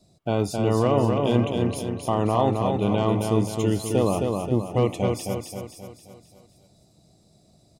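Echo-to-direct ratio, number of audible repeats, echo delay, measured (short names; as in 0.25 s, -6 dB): -3.0 dB, 6, 0.265 s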